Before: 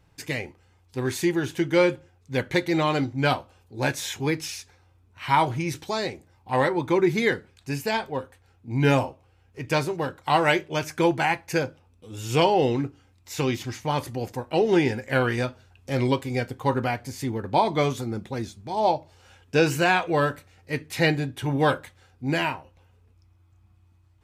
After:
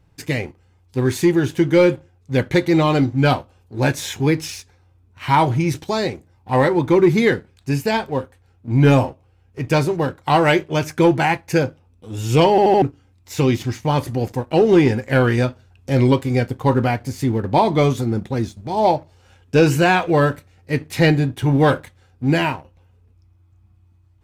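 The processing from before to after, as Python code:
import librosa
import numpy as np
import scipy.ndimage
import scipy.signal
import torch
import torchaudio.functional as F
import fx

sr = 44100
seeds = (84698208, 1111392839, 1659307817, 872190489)

y = fx.edit(x, sr, fx.stutter_over(start_s=12.5, slice_s=0.08, count=4), tone=tone)
y = fx.low_shelf(y, sr, hz=470.0, db=7.0)
y = fx.leveller(y, sr, passes=1)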